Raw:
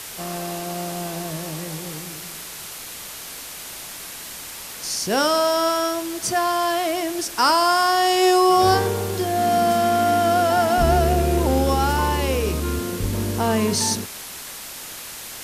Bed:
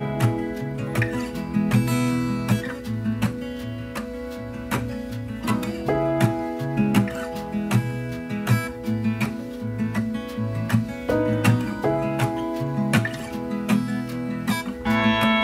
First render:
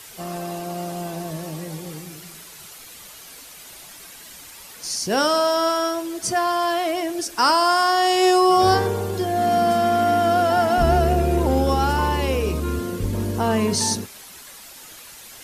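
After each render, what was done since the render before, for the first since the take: noise reduction 9 dB, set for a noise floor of -36 dBFS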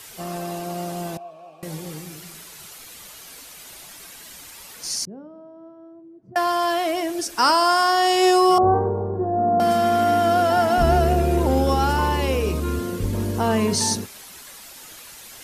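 1.17–1.63 s: vowel filter a; 5.05–6.36 s: ladder band-pass 170 Hz, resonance 30%; 8.58–9.60 s: inverse Chebyshev low-pass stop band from 4.5 kHz, stop band 70 dB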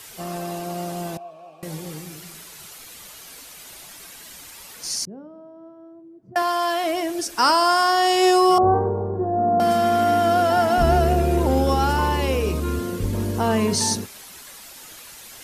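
6.42–6.84 s: high-pass 350 Hz 6 dB/octave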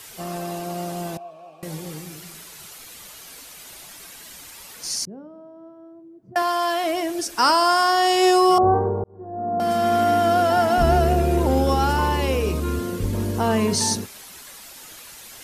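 9.04–9.94 s: fade in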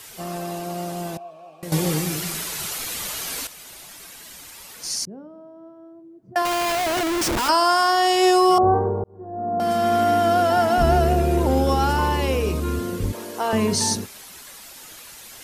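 1.72–3.47 s: gain +12 dB; 6.45–7.49 s: Schmitt trigger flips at -35 dBFS; 13.12–13.53 s: high-pass 480 Hz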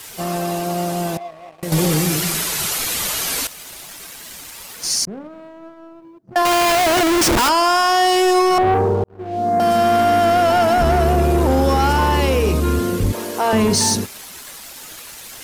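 waveshaping leveller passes 2; peak limiter -10 dBFS, peak gain reduction 3 dB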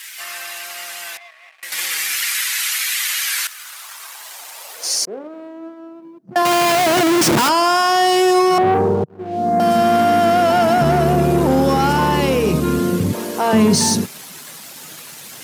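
high-pass sweep 1.9 kHz -> 150 Hz, 3.22–6.50 s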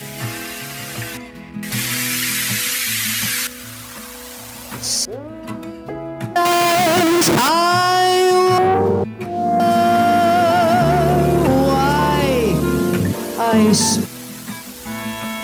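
add bed -7 dB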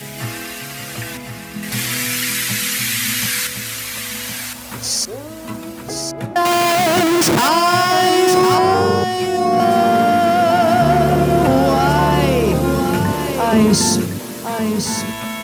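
delay 1061 ms -6.5 dB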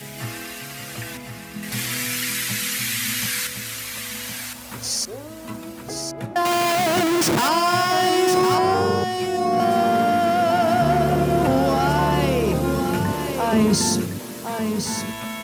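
trim -5 dB

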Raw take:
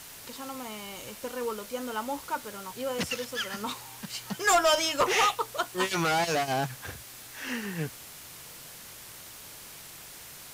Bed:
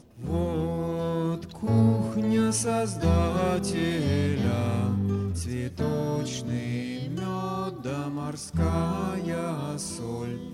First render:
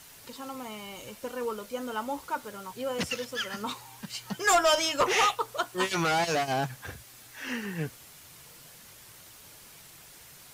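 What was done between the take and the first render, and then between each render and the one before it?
noise reduction 6 dB, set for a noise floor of -46 dBFS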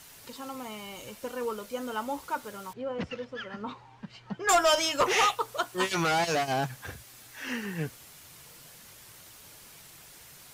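2.73–4.49 s: tape spacing loss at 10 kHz 33 dB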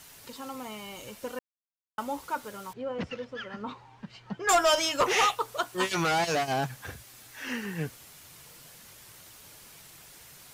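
1.39–1.98 s: mute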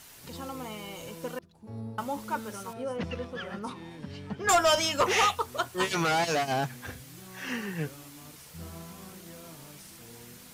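add bed -18.5 dB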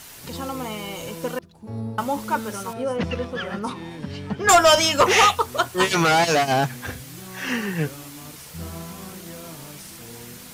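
trim +8.5 dB

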